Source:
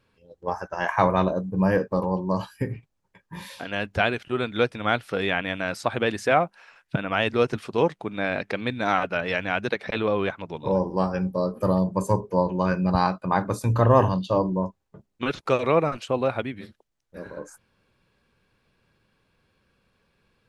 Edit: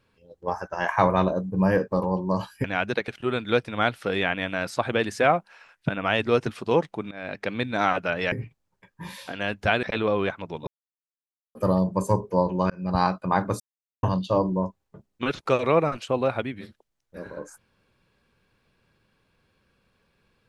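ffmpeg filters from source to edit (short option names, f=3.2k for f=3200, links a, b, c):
-filter_complex "[0:a]asplit=11[a][b][c][d][e][f][g][h][i][j][k];[a]atrim=end=2.642[l];[b]atrim=start=9.388:end=9.832[m];[c]atrim=start=4.148:end=8.18,asetpts=PTS-STARTPTS,afade=t=out:st=4.028:d=0.004:c=hsin:silence=0.0841395[n];[d]atrim=start=8.18:end=9.392,asetpts=PTS-STARTPTS,afade=t=in:d=0.4:silence=0.0841395[o];[e]atrim=start=2.638:end=4.152[p];[f]atrim=start=9.828:end=10.67,asetpts=PTS-STARTPTS,afade=t=out:st=0.838:d=0.004:c=hsin[q];[g]atrim=start=10.67:end=11.55,asetpts=PTS-STARTPTS,volume=0[r];[h]atrim=start=11.55:end=12.7,asetpts=PTS-STARTPTS,afade=t=in:d=0.004:c=hsin,afade=t=out:st=1.146:d=0.004:c=hsin[s];[i]atrim=start=12.7:end=13.6,asetpts=PTS-STARTPTS,afade=t=in:d=0.32,afade=t=out:st=0.896:d=0.004:c=hsin[t];[j]atrim=start=13.6:end=14.03,asetpts=PTS-STARTPTS,volume=0[u];[k]atrim=start=14.03,asetpts=PTS-STARTPTS,afade=t=in:d=0.004:c=hsin[v];[l][m]acrossfade=d=0.004:c1=hsin:c2=hsin[w];[n][o]concat=n=2:v=0:a=1[x];[w][x]acrossfade=d=0.004:c1=hsin:c2=hsin[y];[y][p]acrossfade=d=0.004:c1=hsin:c2=hsin[z];[q][r][s][t][u][v]concat=n=6:v=0:a=1[aa];[z][aa]acrossfade=d=0.004:c1=hsin:c2=hsin"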